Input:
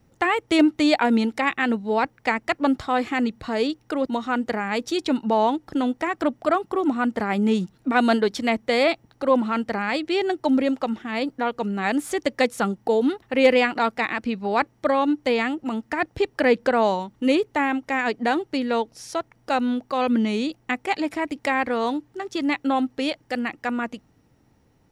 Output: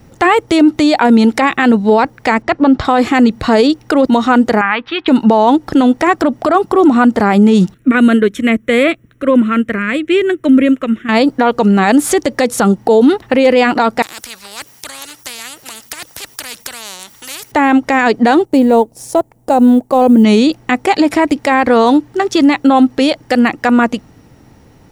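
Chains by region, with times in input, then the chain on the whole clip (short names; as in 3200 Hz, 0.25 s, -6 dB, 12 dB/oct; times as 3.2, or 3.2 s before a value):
2.42–2.85 short-mantissa float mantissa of 6-bit + air absorption 140 m
4.61–5.08 steep low-pass 3100 Hz + resonant low shelf 800 Hz -12.5 dB, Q 1.5
7.74–11.09 fixed phaser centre 2000 Hz, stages 4 + upward expander, over -33 dBFS
14.02–17.52 pre-emphasis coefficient 0.97 + spectral compressor 4:1
18.45–20.24 G.711 law mismatch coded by A + band shelf 2600 Hz -13 dB 2.6 oct
whole clip: dynamic EQ 2300 Hz, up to -5 dB, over -37 dBFS, Q 1.1; maximiser +18.5 dB; gain -1 dB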